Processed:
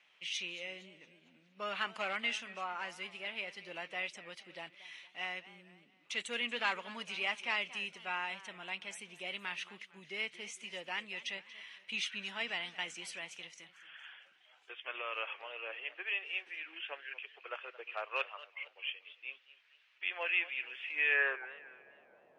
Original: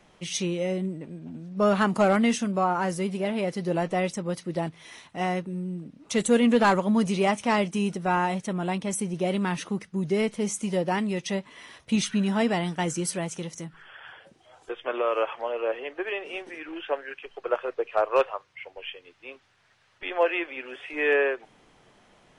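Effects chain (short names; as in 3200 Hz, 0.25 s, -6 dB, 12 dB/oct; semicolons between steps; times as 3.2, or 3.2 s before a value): band-pass sweep 2600 Hz -> 560 Hz, 21.09–21.59; warbling echo 0.229 s, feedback 42%, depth 167 cents, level -17 dB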